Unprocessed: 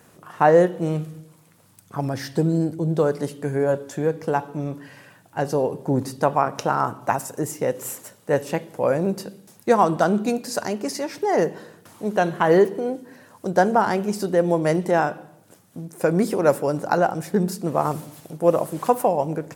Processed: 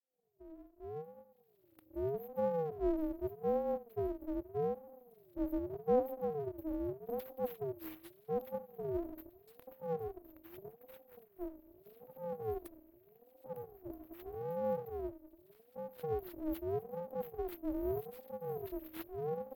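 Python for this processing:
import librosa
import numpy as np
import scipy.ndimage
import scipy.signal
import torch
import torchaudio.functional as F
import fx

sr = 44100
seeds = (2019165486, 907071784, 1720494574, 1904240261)

y = fx.fade_in_head(x, sr, length_s=3.48)
y = fx.brickwall_bandstop(y, sr, low_hz=160.0, high_hz=13000.0)
y = np.abs(y)
y = fx.ring_lfo(y, sr, carrier_hz=420.0, swing_pct=25, hz=0.82)
y = y * 10.0 ** (1.5 / 20.0)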